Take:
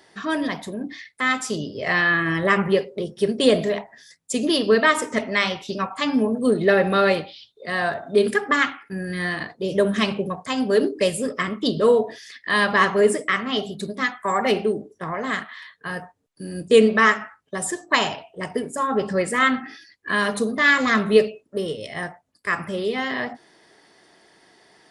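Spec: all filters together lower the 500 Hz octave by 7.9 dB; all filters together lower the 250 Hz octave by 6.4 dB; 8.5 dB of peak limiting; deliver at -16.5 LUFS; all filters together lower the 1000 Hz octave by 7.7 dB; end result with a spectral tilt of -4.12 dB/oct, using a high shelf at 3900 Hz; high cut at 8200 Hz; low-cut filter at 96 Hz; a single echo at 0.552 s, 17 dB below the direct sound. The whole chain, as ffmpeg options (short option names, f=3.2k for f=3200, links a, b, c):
-af "highpass=96,lowpass=8.2k,equalizer=f=250:t=o:g=-6,equalizer=f=500:t=o:g=-6,equalizer=f=1k:t=o:g=-8,highshelf=f=3.9k:g=-4,alimiter=limit=-17dB:level=0:latency=1,aecho=1:1:552:0.141,volume=13dB"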